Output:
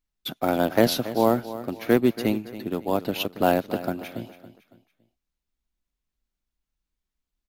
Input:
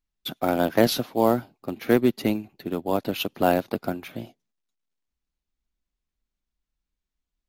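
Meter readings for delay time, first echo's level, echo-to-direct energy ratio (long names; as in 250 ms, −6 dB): 279 ms, −14.5 dB, −14.0 dB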